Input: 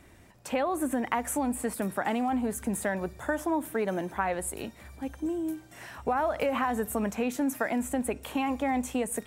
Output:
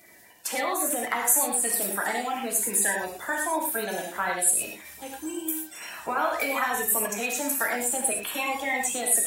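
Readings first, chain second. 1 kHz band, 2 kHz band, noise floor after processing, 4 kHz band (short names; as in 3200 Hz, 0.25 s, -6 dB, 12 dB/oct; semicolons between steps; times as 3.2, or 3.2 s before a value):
+2.0 dB, +7.5 dB, -47 dBFS, +8.5 dB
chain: bin magnitudes rounded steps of 30 dB; tilt +4 dB/oct; non-linear reverb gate 0.14 s flat, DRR 0 dB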